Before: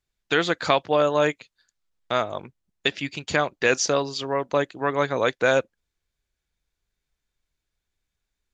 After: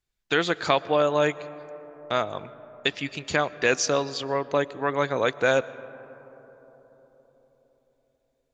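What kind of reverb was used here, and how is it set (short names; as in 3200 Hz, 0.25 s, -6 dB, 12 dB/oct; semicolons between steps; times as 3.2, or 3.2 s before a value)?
digital reverb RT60 4.4 s, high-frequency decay 0.25×, pre-delay 80 ms, DRR 17.5 dB; gain -1.5 dB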